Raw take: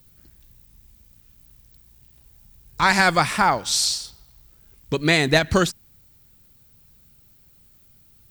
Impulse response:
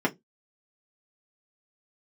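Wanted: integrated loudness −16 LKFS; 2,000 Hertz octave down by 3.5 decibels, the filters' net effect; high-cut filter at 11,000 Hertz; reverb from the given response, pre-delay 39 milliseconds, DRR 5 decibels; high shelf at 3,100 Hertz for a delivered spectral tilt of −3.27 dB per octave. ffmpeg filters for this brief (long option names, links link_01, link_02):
-filter_complex "[0:a]lowpass=11000,equalizer=frequency=2000:width_type=o:gain=-6.5,highshelf=frequency=3100:gain=6,asplit=2[link_01][link_02];[1:a]atrim=start_sample=2205,adelay=39[link_03];[link_02][link_03]afir=irnorm=-1:irlink=0,volume=-17dB[link_04];[link_01][link_04]amix=inputs=2:normalize=0,volume=2dB"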